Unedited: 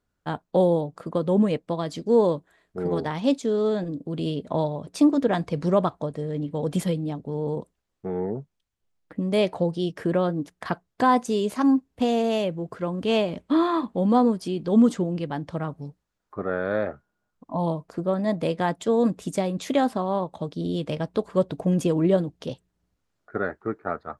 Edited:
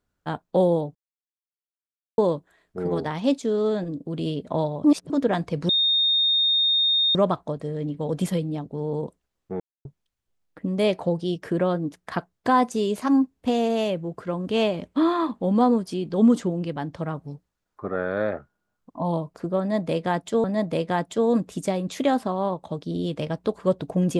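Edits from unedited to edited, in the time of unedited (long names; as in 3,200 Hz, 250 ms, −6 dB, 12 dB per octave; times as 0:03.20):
0:00.95–0:02.18: silence
0:04.84–0:05.10: reverse
0:05.69: insert tone 3,680 Hz −17.5 dBFS 1.46 s
0:08.14–0:08.39: silence
0:18.14–0:18.98: repeat, 2 plays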